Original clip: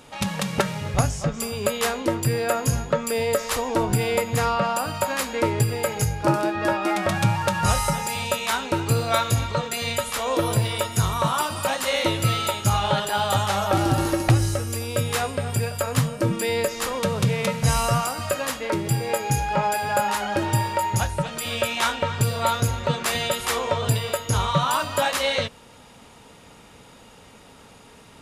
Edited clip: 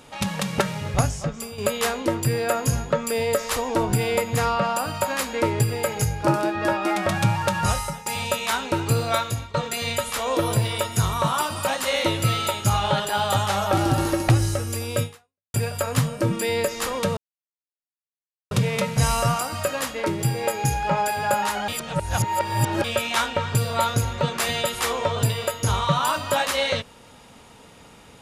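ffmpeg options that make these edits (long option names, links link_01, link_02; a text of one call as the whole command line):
ffmpeg -i in.wav -filter_complex "[0:a]asplit=8[link_01][link_02][link_03][link_04][link_05][link_06][link_07][link_08];[link_01]atrim=end=1.58,asetpts=PTS-STARTPTS,afade=type=out:start_time=1.05:duration=0.53:silence=0.375837[link_09];[link_02]atrim=start=1.58:end=8.06,asetpts=PTS-STARTPTS,afade=type=in:duration=0.004:curve=hsin:silence=0.375837,afade=type=out:start_time=6.01:duration=0.47:silence=0.16788[link_10];[link_03]atrim=start=8.06:end=9.54,asetpts=PTS-STARTPTS,afade=type=in:duration=0.004:curve=hsin:silence=0.16788,afade=type=out:start_time=1.01:duration=0.47:silence=0.158489[link_11];[link_04]atrim=start=9.54:end=15.54,asetpts=PTS-STARTPTS,afade=type=in:duration=0.004:curve=hsin:silence=0.158489,afade=type=out:start_time=5.49:duration=0.51:curve=exp[link_12];[link_05]atrim=start=15.54:end=17.17,asetpts=PTS-STARTPTS,afade=type=in:duration=0.004:curve=hsin,afade=type=out:start_time=1.626:duration=0.004:curve=hsin,apad=pad_dur=1.34[link_13];[link_06]atrim=start=17.17:end=20.342,asetpts=PTS-STARTPTS,afade=type=in:duration=0.004:curve=hsin[link_14];[link_07]atrim=start=20.338:end=21.502,asetpts=PTS-STARTPTS,areverse[link_15];[link_08]atrim=start=21.498[link_16];[link_09][link_10][link_11][link_12][link_13][link_14]concat=n=6:v=0:a=1[link_17];[link_17][link_15]acrossfade=duration=0.004:curve1=hsin:curve2=hsin[link_18];[link_18][link_16]acrossfade=duration=0.004:curve1=hsin:curve2=hsin" out.wav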